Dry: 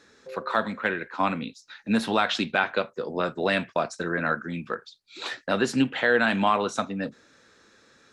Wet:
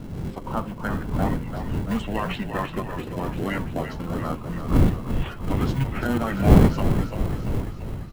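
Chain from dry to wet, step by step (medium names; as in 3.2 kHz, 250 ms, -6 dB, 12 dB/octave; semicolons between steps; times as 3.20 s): coarse spectral quantiser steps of 30 dB; wind noise 280 Hz -24 dBFS; in parallel at -7 dB: sample-and-hold 36×; on the sum: formant shift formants -5 st; dynamic bell 5.6 kHz, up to -5 dB, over -49 dBFS, Q 1.3; on a send: frequency-shifting echo 341 ms, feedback 63%, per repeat -43 Hz, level -8 dB; on the sum: trim -4 dB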